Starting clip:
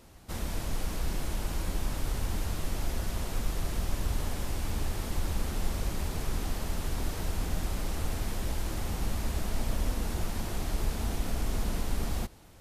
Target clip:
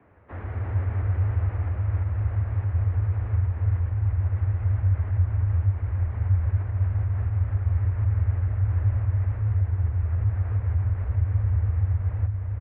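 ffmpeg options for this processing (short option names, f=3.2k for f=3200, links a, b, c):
-filter_complex "[0:a]asubboost=boost=5:cutoff=210,acompressor=threshold=-19dB:ratio=6,afreqshift=-170,asplit=2[a][b];[b]aecho=0:1:343:0.631[c];[a][c]amix=inputs=2:normalize=0,highpass=f=160:t=q:w=0.5412,highpass=f=160:t=q:w=1.307,lowpass=f=2.1k:t=q:w=0.5176,lowpass=f=2.1k:t=q:w=0.7071,lowpass=f=2.1k:t=q:w=1.932,afreqshift=-58,volume=3dB"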